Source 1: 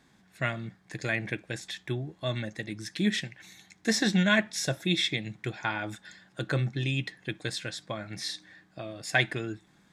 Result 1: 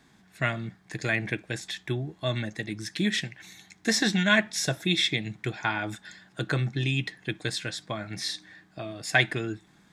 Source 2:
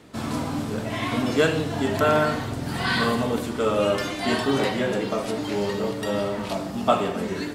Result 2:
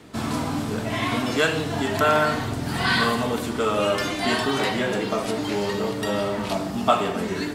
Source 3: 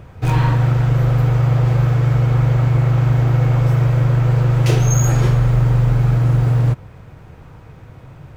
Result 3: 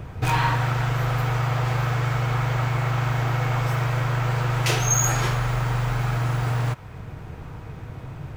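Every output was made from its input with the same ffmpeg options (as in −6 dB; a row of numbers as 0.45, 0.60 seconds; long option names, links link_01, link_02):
-filter_complex "[0:a]bandreject=frequency=540:width=12,acrossover=split=670[link_01][link_02];[link_01]acompressor=threshold=-26dB:ratio=6[link_03];[link_03][link_02]amix=inputs=2:normalize=0,volume=3dB"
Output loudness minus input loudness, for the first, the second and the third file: +2.0, +1.0, −8.0 LU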